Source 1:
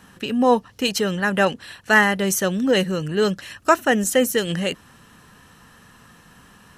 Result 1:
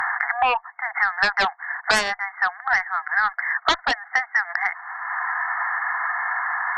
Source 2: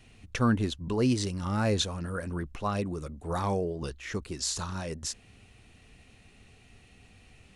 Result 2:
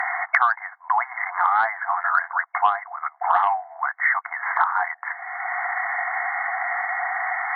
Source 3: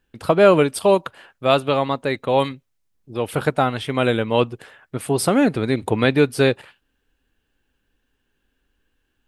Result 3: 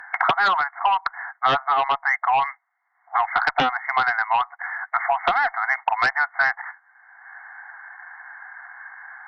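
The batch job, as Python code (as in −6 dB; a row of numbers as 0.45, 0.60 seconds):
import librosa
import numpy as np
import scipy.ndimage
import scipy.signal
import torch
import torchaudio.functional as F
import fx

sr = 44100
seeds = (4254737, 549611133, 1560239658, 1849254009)

y = fx.brickwall_bandpass(x, sr, low_hz=680.0, high_hz=2200.0)
y = fx.cheby_harmonics(y, sr, harmonics=(7,), levels_db=(-6,), full_scale_db=-3.0)
y = fx.band_squash(y, sr, depth_pct=100)
y = y * 10.0 ** (-24 / 20.0) / np.sqrt(np.mean(np.square(y)))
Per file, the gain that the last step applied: +0.5, +12.0, +0.5 decibels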